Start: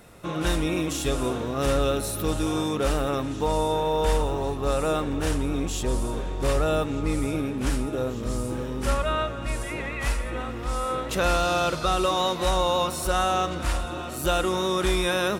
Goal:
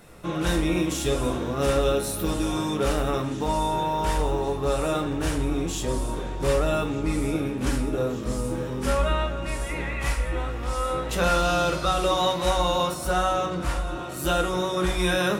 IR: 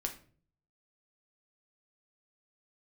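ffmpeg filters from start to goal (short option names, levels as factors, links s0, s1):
-filter_complex "[1:a]atrim=start_sample=2205,afade=t=out:st=0.2:d=0.01,atrim=end_sample=9261[s0];[0:a][s0]afir=irnorm=-1:irlink=0,asplit=3[s1][s2][s3];[s1]afade=t=out:st=12.93:d=0.02[s4];[s2]adynamicequalizer=threshold=0.0141:dfrequency=1700:dqfactor=0.7:tfrequency=1700:tqfactor=0.7:attack=5:release=100:ratio=0.375:range=2.5:mode=cutabove:tftype=highshelf,afade=t=in:st=12.93:d=0.02,afade=t=out:st=14.98:d=0.02[s5];[s3]afade=t=in:st=14.98:d=0.02[s6];[s4][s5][s6]amix=inputs=3:normalize=0"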